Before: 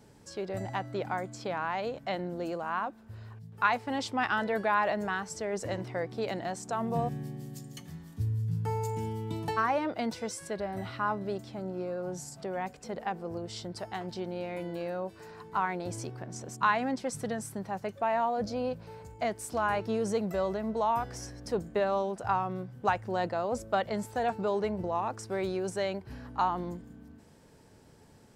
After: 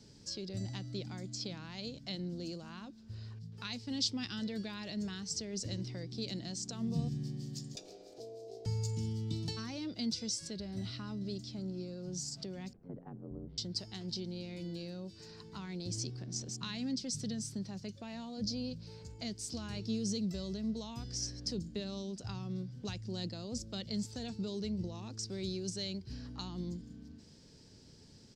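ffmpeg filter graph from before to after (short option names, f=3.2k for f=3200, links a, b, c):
-filter_complex "[0:a]asettb=1/sr,asplit=3[a][b][c];[a]atrim=end=7.754[d];[b]atrim=start=7.75:end=8.66,asetpts=PTS-STARTPTS,afade=t=in:d=0.004:c=qsin,afade=t=out:st=0.906:d=0.004:c=qsin,aeval=exprs='val(0)+0.00708*(sin(2*PI*50*n/s)+sin(2*PI*2*50*n/s)/2+sin(2*PI*3*50*n/s)/3+sin(2*PI*4*50*n/s)/4+sin(2*PI*5*50*n/s)/5)':c=same,aeval=exprs='val(0)*sin(2*PI*560*n/s)':c=same[e];[c]atrim=start=8.656[f];[d][e]acrossfade=d=0.004:c1=hsin:c2=qsin[g];[g][f]acrossfade=d=0.004:c1=qsin:c2=hsin,asettb=1/sr,asplit=3[h][i][j];[h]atrim=end=12.734[k];[i]atrim=start=12.73:end=13.58,asetpts=PTS-STARTPTS,afade=t=in:d=0.004:c=qsin,afade=t=out:st=0.846:d=0.004:c=qsin,lowpass=f=1.3k:w=0.5412,lowpass=f=1.3k:w=1.3066,aeval=exprs='val(0)*sin(2*PI*46*n/s)':c=same[l];[j]atrim=start=13.576[m];[k][l]acrossfade=d=0.004:c1=hsin:c2=qsin[n];[n][m]acrossfade=d=0.004:c1=qsin:c2=hsin,firequalizer=gain_entry='entry(230,0);entry(770,-12);entry(4800,11);entry(11000,-14)':delay=0.05:min_phase=1,acrossover=split=320|3000[o][p][q];[p]acompressor=threshold=-55dB:ratio=3[r];[o][r][q]amix=inputs=3:normalize=0"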